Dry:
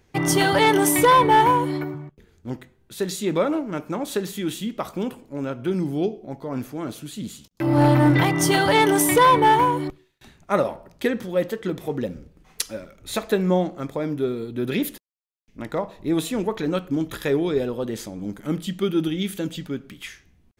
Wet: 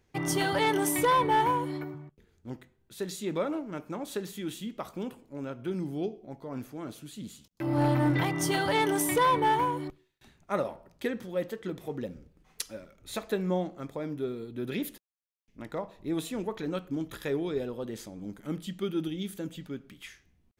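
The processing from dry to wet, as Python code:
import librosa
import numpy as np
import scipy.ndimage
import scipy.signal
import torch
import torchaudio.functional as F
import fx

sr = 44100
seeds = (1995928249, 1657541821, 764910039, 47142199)

y = fx.peak_eq(x, sr, hz=fx.line((19.06, 1200.0), (19.63, 6000.0)), db=-6.0, octaves=1.0, at=(19.06, 19.63), fade=0.02)
y = y * librosa.db_to_amplitude(-9.0)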